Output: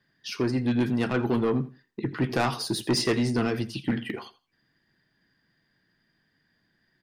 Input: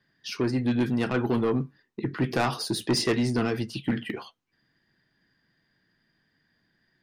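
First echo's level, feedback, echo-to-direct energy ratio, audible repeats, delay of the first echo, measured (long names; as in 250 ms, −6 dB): −18.0 dB, 22%, −18.0 dB, 2, 84 ms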